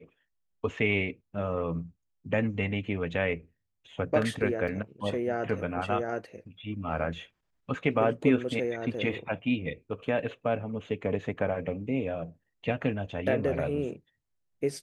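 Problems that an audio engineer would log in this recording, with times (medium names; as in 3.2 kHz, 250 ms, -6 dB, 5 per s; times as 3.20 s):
4.68 s: dropout 3.5 ms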